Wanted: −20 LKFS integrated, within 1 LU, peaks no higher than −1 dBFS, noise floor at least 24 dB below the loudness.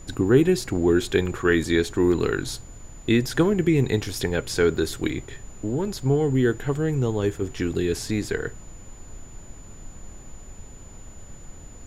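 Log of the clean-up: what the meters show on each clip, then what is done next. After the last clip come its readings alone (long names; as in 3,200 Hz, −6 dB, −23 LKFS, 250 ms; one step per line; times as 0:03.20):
interfering tone 7,000 Hz; level of the tone −49 dBFS; background noise floor −43 dBFS; target noise floor −48 dBFS; integrated loudness −23.5 LKFS; sample peak −6.0 dBFS; target loudness −20.0 LKFS
→ notch filter 7,000 Hz, Q 30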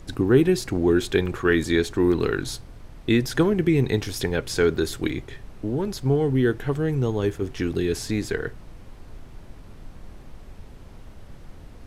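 interfering tone none found; background noise floor −44 dBFS; target noise floor −48 dBFS
→ noise reduction from a noise print 6 dB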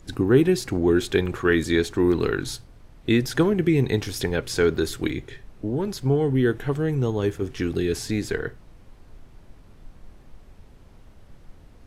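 background noise floor −50 dBFS; integrated loudness −23.5 LKFS; sample peak −5.5 dBFS; target loudness −20.0 LKFS
→ level +3.5 dB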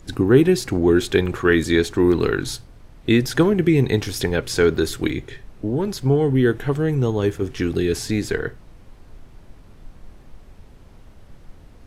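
integrated loudness −20.0 LKFS; sample peak −2.0 dBFS; background noise floor −46 dBFS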